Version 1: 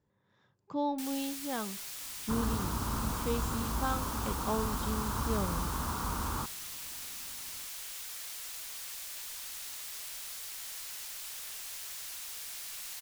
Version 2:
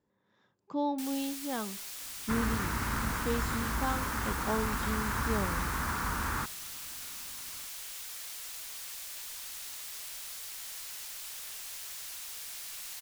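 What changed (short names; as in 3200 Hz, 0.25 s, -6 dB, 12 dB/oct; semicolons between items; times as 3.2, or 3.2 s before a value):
speech: add resonant low shelf 170 Hz -6 dB, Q 1.5; second sound: remove inverse Chebyshev low-pass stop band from 3100 Hz, stop band 50 dB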